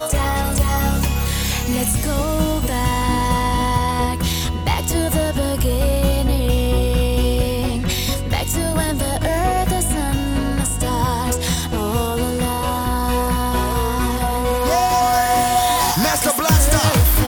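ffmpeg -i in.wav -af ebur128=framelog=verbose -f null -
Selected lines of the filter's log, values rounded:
Integrated loudness:
  I:         -18.7 LUFS
  Threshold: -28.7 LUFS
Loudness range:
  LRA:         2.9 LU
  Threshold: -39.1 LUFS
  LRA low:   -20.1 LUFS
  LRA high:  -17.2 LUFS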